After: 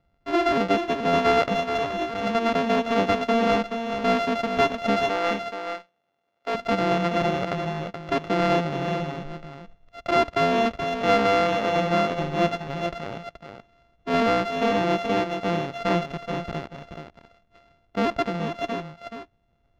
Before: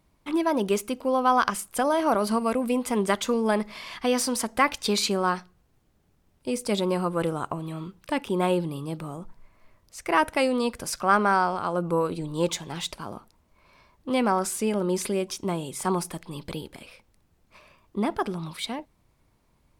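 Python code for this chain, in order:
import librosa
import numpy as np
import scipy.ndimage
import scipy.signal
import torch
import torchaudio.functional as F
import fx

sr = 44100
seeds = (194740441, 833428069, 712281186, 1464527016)

y = np.r_[np.sort(x[:len(x) // 64 * 64].reshape(-1, 64), axis=1).ravel(), x[len(x) // 64 * 64:]]
y = fx.over_compress(y, sr, threshold_db=-30.0, ratio=-1.0, at=(1.43, 2.35))
y = fx.highpass(y, sr, hz=410.0, slope=12, at=(5.08, 6.55))
y = fx.leveller(y, sr, passes=1)
y = fx.air_absorb(y, sr, metres=220.0)
y = y + 10.0 ** (-7.5 / 20.0) * np.pad(y, (int(427 * sr / 1000.0), 0))[:len(y)]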